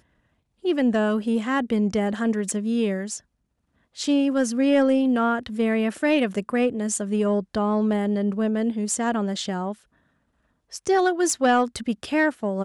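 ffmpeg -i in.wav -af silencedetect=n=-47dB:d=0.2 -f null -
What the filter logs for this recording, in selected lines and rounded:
silence_start: 0.00
silence_end: 0.64 | silence_duration: 0.64
silence_start: 3.20
silence_end: 3.96 | silence_duration: 0.75
silence_start: 9.82
silence_end: 10.71 | silence_duration: 0.89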